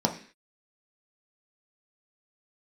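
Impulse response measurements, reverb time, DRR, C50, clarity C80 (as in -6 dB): 0.45 s, 1.5 dB, 11.0 dB, 15.5 dB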